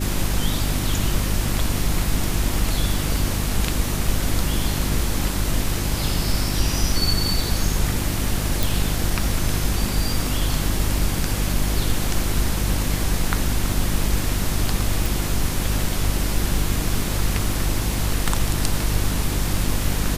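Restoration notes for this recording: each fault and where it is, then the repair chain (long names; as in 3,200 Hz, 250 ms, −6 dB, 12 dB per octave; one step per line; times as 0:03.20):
mains hum 50 Hz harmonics 7 −25 dBFS
0:08.63: click
0:15.06: click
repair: click removal
hum removal 50 Hz, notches 7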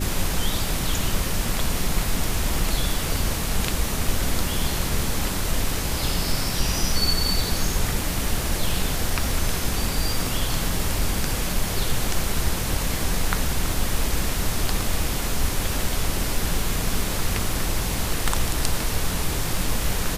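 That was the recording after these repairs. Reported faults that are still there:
none of them is left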